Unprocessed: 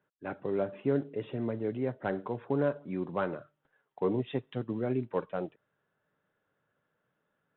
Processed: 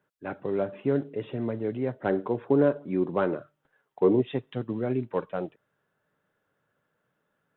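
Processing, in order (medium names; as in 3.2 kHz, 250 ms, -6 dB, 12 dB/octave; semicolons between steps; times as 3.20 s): 1.93–4.28 s: dynamic bell 350 Hz, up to +7 dB, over -43 dBFS, Q 1.2; trim +3 dB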